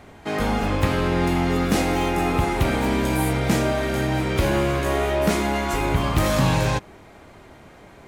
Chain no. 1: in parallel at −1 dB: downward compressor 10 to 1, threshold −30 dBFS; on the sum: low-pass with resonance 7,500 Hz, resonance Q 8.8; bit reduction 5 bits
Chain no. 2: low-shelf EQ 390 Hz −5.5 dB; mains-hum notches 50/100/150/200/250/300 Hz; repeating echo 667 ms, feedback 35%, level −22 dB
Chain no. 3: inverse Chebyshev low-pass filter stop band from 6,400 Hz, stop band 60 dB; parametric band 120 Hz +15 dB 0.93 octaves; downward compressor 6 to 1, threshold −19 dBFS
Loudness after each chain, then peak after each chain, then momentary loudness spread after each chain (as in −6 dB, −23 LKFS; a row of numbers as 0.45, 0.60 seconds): −19.0, −24.5, −23.5 LKFS; −5.5, −11.0, −10.5 dBFS; 3, 4, 20 LU